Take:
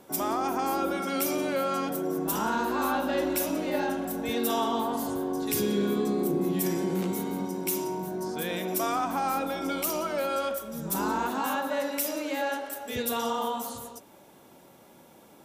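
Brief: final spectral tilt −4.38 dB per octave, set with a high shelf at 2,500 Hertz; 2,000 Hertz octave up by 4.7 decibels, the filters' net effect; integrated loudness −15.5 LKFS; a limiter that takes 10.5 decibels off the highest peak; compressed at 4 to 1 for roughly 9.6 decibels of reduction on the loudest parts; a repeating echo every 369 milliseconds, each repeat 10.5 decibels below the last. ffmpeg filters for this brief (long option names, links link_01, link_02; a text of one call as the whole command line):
ffmpeg -i in.wav -af "equalizer=frequency=2000:width_type=o:gain=8,highshelf=frequency=2500:gain=-3.5,acompressor=threshold=-35dB:ratio=4,alimiter=level_in=8.5dB:limit=-24dB:level=0:latency=1,volume=-8.5dB,aecho=1:1:369|738|1107:0.299|0.0896|0.0269,volume=25dB" out.wav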